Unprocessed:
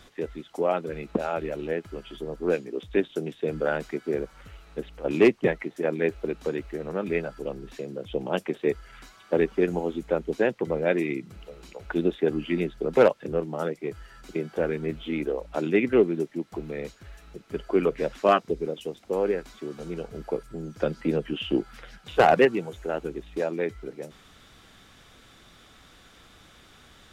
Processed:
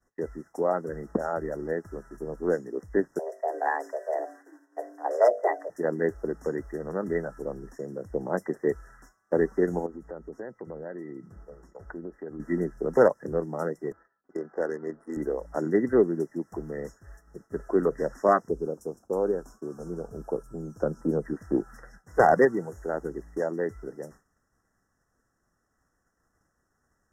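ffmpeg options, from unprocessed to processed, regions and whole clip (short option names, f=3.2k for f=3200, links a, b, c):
-filter_complex "[0:a]asettb=1/sr,asplit=3[a][b][c];[a]atrim=end=3.194[d];[b]atrim=start=3.19:end=5.7,asetpts=PTS-STARTPTS,afade=t=in:d=0.004:c=qsin,afade=t=out:st=2.506:d=0.004:c=qsin,bandreject=f=50:t=h:w=6,bandreject=f=100:t=h:w=6,bandreject=f=150:t=h:w=6,bandreject=f=200:t=h:w=6,bandreject=f=250:t=h:w=6,bandreject=f=300:t=h:w=6,bandreject=f=350:t=h:w=6,bandreject=f=400:t=h:w=6,bandreject=f=450:t=h:w=6,bandreject=f=500:t=h:w=6,afreqshift=240[e];[c]atrim=start=5.696[f];[d][e]acrossfade=d=0.004:c1=hsin:c2=qsin[g];[g][f]acrossfade=d=0.004:c1=qsin:c2=hsin,asettb=1/sr,asplit=3[h][i][j];[h]atrim=end=9.864[k];[i]atrim=start=9.86:end=12.4,asetpts=PTS-STARTPTS,afade=t=in:d=0.004:c=qsin,afade=t=out:st=2.536:d=0.004:c=qsin,highshelf=f=4k:g=-10.5,acompressor=threshold=-37dB:ratio=3:attack=3.2:release=140:knee=1:detection=peak,aeval=exprs='val(0)+0.000398*sin(2*PI*1300*n/s)':c=same[l];[j]atrim=start=12.396[m];[k][l]acrossfade=d=0.004:c1=hsin:c2=qsin[n];[n][m]acrossfade=d=0.004:c1=qsin:c2=hsin,asettb=1/sr,asplit=3[o][p][q];[o]atrim=end=13.924[r];[p]atrim=start=13.92:end=15.17,asetpts=PTS-STARTPTS,afade=t=in:d=0.004:c=qsin,afade=t=out:st=1.246:d=0.004:c=qsin,highpass=310,tremolo=f=45:d=0.182,adynamicsmooth=sensitivity=7.5:basefreq=1.3k[s];[q]atrim=start=15.166[t];[r][s]acrossfade=d=0.004:c1=hsin:c2=qsin[u];[u][t]acrossfade=d=0.004:c1=qsin:c2=hsin,asettb=1/sr,asplit=3[v][w][x];[v]atrim=end=18.494[y];[w]atrim=start=18.49:end=21.24,asetpts=PTS-STARTPTS,afade=t=in:d=0.004:c=qsin,afade=t=out:st=2.746:d=0.004:c=qsin,asuperstop=centerf=2200:order=4:qfactor=1.3,equalizer=f=2.6k:w=1.6:g=-8[z];[x]atrim=start=21.236[aa];[y][z]acrossfade=d=0.004:c1=hsin:c2=qsin[ab];[ab][aa]acrossfade=d=0.004:c1=qsin:c2=hsin,afftfilt=real='re*(1-between(b*sr/4096,2000,5100))':imag='im*(1-between(b*sr/4096,2000,5100))':win_size=4096:overlap=0.75,agate=range=-33dB:threshold=-42dB:ratio=3:detection=peak,volume=-1dB"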